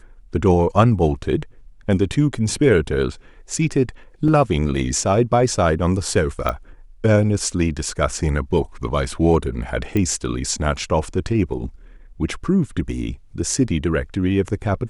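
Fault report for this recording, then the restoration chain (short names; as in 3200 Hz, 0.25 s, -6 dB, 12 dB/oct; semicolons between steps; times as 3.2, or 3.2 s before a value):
4.28 gap 3.1 ms
6.49 pop -10 dBFS
9.97 pop -10 dBFS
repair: de-click; interpolate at 4.28, 3.1 ms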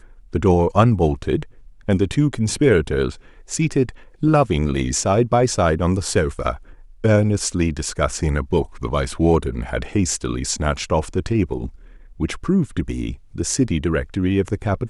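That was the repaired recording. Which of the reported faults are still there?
none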